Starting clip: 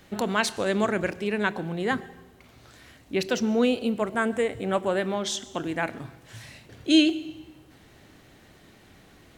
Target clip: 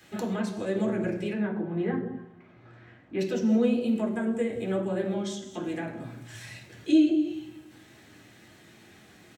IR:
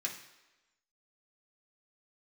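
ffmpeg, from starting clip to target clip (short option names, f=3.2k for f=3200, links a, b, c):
-filter_complex "[0:a]asettb=1/sr,asplit=3[a][b][c];[a]atrim=end=1.334[d];[b]atrim=start=1.33:end=3.19,asetpts=PTS-STARTPTS,afade=t=in:d=0.004:c=qsin,afade=t=out:st=1.856:d=0.004:c=qsin,lowpass=1.6k[e];[c]atrim=start=3.186[f];[d][e]acrossfade=d=0.004:c1=hsin:c2=qsin[g];[g][f]acrossfade=d=0.004:c1=qsin:c2=hsin,acrossover=split=600[h][i];[h]aecho=1:1:168:0.501[j];[i]acompressor=threshold=-40dB:ratio=10[k];[j][k]amix=inputs=2:normalize=0[l];[1:a]atrim=start_sample=2205,atrim=end_sample=6174[m];[l][m]afir=irnorm=-1:irlink=0"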